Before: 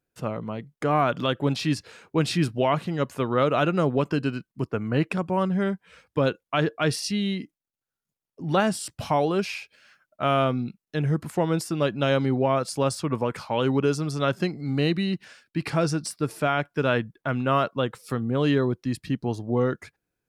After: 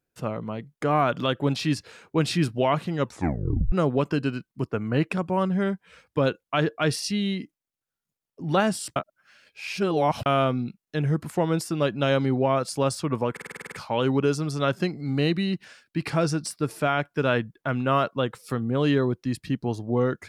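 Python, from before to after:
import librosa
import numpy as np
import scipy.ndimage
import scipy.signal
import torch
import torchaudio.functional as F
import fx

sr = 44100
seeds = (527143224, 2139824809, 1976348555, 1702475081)

y = fx.edit(x, sr, fx.tape_stop(start_s=3.01, length_s=0.71),
    fx.reverse_span(start_s=8.96, length_s=1.3),
    fx.stutter(start_s=13.32, slice_s=0.05, count=9), tone=tone)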